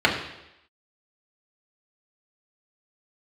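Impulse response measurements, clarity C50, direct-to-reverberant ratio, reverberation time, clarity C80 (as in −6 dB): 6.5 dB, −3.0 dB, 0.85 s, 9.0 dB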